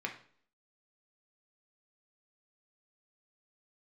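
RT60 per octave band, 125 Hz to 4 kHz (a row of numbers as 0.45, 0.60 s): 0.50, 0.60, 0.55, 0.50, 0.45, 0.50 s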